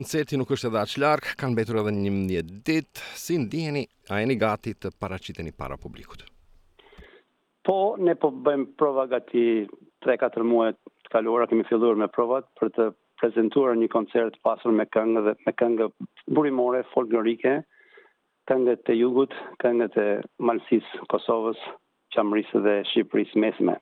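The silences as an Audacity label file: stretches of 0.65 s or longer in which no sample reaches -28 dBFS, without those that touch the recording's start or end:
5.870000	7.660000	silence
17.600000	18.480000	silence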